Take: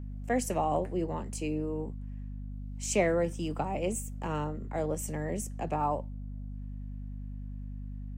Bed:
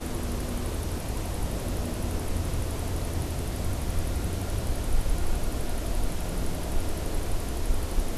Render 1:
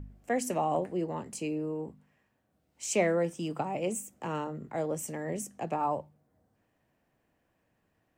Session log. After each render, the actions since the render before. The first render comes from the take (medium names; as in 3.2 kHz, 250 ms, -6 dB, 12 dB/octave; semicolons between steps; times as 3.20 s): de-hum 50 Hz, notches 5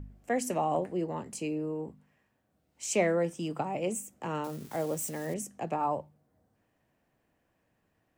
4.44–5.34 s: zero-crossing glitches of -36 dBFS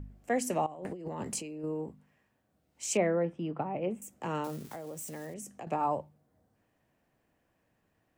0.66–1.64 s: compressor with a negative ratio -40 dBFS; 2.97–4.02 s: distance through air 460 m; 4.62–5.67 s: compression 8:1, threshold -38 dBFS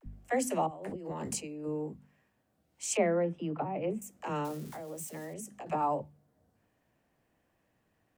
phase dispersion lows, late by 54 ms, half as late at 320 Hz; vibrato 0.43 Hz 39 cents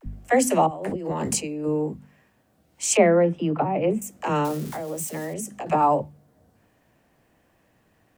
trim +11 dB